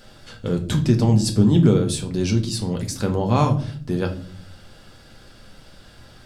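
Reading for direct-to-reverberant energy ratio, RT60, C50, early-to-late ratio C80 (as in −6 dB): 3.0 dB, 0.50 s, 12.5 dB, 18.0 dB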